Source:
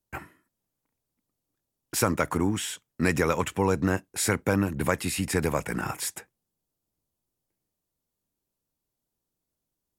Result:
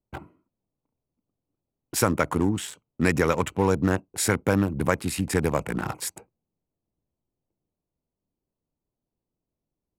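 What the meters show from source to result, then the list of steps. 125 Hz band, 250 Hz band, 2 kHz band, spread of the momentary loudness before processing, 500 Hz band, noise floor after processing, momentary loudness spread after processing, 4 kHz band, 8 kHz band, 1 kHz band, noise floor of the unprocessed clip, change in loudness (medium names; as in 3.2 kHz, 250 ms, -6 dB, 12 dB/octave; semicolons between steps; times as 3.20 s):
+2.5 dB, +2.5 dB, +1.0 dB, 8 LU, +2.5 dB, under -85 dBFS, 10 LU, -0.5 dB, +0.5 dB, +1.5 dB, -85 dBFS, +2.0 dB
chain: local Wiener filter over 25 samples; trim +2.5 dB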